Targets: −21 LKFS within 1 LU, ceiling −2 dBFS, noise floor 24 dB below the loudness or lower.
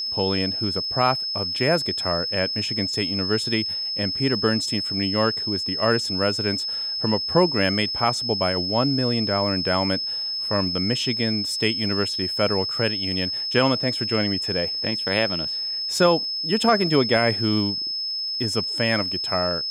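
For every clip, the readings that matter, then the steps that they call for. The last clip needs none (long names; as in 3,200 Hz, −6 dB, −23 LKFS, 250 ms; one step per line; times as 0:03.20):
crackle rate 34 per second; interfering tone 5,200 Hz; level of the tone −25 dBFS; integrated loudness −22.0 LKFS; sample peak −6.0 dBFS; target loudness −21.0 LKFS
→ click removal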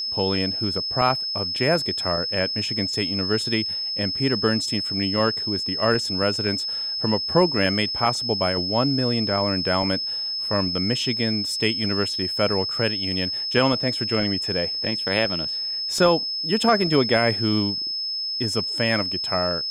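crackle rate 0.051 per second; interfering tone 5,200 Hz; level of the tone −25 dBFS
→ notch filter 5,200 Hz, Q 30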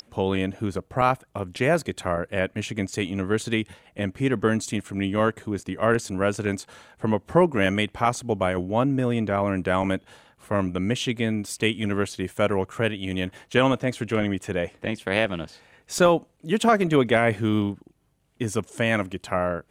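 interfering tone none found; integrated loudness −25.0 LKFS; sample peak −7.0 dBFS; target loudness −21.0 LKFS
→ level +4 dB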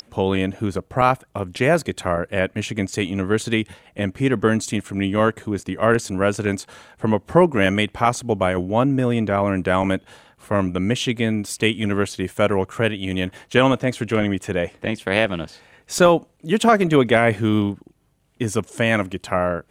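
integrated loudness −21.0 LKFS; sample peak −3.0 dBFS; background noise floor −59 dBFS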